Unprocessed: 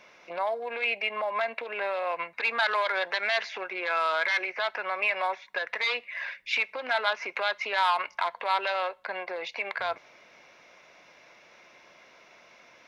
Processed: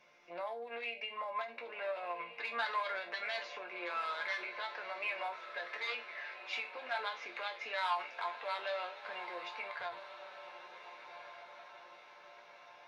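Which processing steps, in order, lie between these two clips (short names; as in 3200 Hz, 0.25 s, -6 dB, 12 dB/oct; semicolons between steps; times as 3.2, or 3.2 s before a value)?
resonator bank A#2 major, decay 0.24 s; on a send: diffused feedback echo 1.505 s, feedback 52%, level -11.5 dB; on the sum: ending taper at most 140 dB/s; gain +2 dB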